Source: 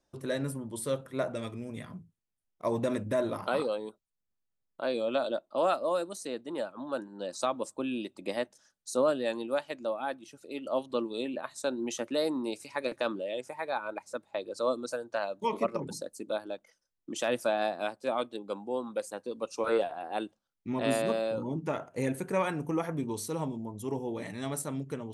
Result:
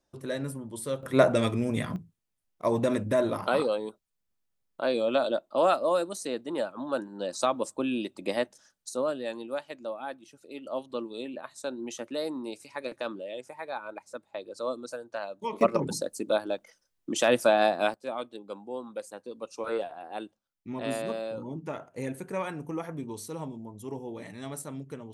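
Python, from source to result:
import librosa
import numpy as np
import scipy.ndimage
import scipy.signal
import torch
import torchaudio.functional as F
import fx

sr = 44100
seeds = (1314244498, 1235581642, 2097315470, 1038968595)

y = fx.gain(x, sr, db=fx.steps((0.0, -0.5), (1.03, 11.5), (1.96, 4.0), (8.89, -3.0), (15.61, 7.0), (17.94, -3.5)))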